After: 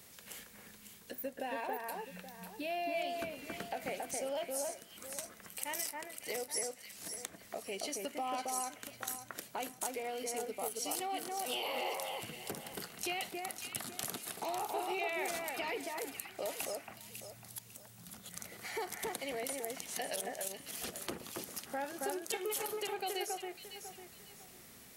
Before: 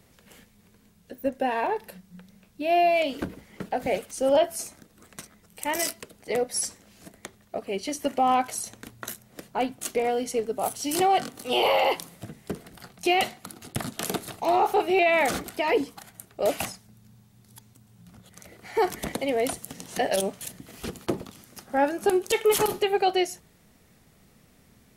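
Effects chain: tilt EQ +2.5 dB/octave; compression 3:1, threshold -42 dBFS, peak gain reduction 19.5 dB; on a send: echo whose repeats swap between lows and highs 275 ms, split 2.1 kHz, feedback 54%, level -2 dB

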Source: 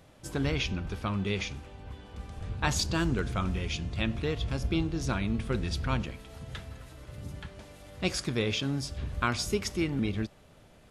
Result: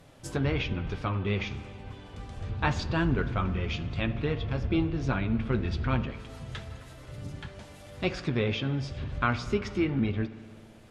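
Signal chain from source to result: low-pass that closes with the level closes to 2.7 kHz, closed at -27.5 dBFS; flange 0.97 Hz, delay 6.8 ms, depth 2.5 ms, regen -46%; spring tank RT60 2.1 s, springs 58 ms, chirp 25 ms, DRR 15 dB; trim +6 dB

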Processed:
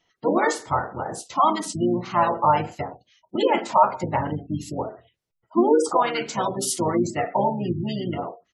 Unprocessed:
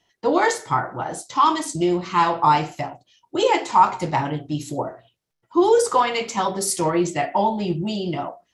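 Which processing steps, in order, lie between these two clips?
harmony voices -7 st -6 dB, -4 st -16 dB; spectral gate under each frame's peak -25 dB strong; trim -3 dB

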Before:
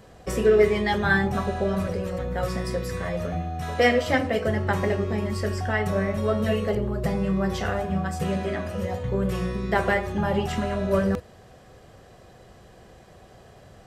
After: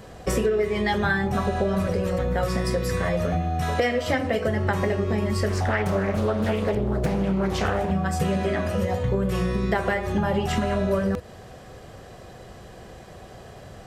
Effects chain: compression 10:1, threshold -26 dBFS, peak gain reduction 13.5 dB; 5.48–7.91 s: loudspeaker Doppler distortion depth 0.49 ms; trim +6.5 dB

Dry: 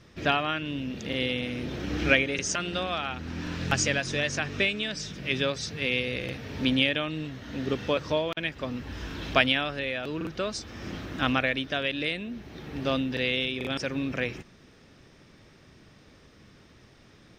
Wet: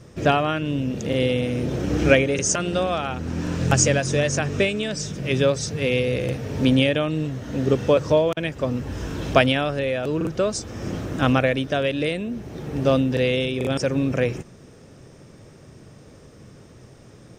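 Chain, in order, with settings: graphic EQ 125/500/2000/4000/8000 Hz +7/+6/-4/-7/+9 dB; trim +5 dB

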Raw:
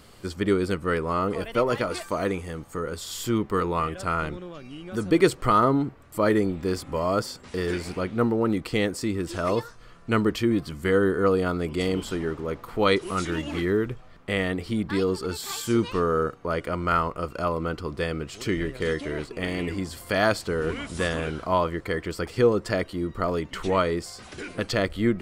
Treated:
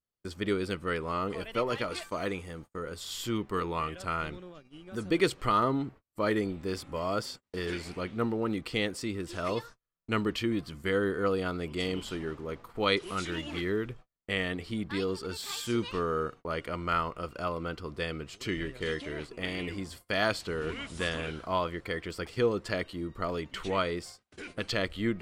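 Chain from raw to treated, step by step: gate -39 dBFS, range -38 dB; dynamic bell 3.1 kHz, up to +7 dB, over -44 dBFS, Q 0.91; vibrato 0.47 Hz 30 cents; trim -7.5 dB

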